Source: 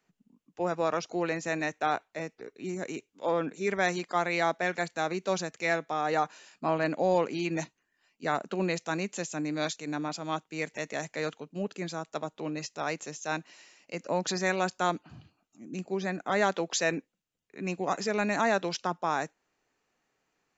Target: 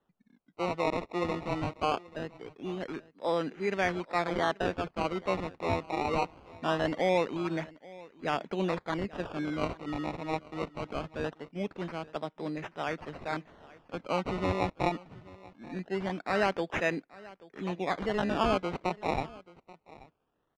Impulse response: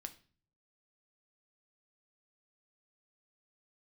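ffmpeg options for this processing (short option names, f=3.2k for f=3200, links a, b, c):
-af "acrusher=samples=19:mix=1:aa=0.000001:lfo=1:lforange=19:lforate=0.22,lowpass=3.1k,aecho=1:1:833:0.0891,volume=-1dB"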